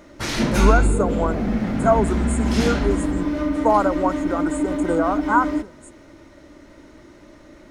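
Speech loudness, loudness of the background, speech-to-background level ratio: -23.0 LUFS, -22.5 LUFS, -0.5 dB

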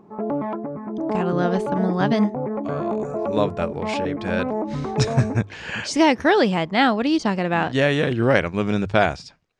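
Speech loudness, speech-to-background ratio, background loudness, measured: -21.5 LUFS, 5.5 dB, -27.0 LUFS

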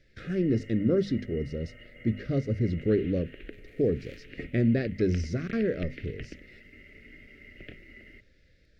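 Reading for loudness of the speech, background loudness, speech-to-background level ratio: -29.0 LUFS, -48.0 LUFS, 19.0 dB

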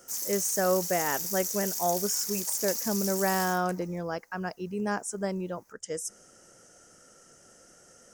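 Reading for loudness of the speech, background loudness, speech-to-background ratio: -30.5 LUFS, -31.0 LUFS, 0.5 dB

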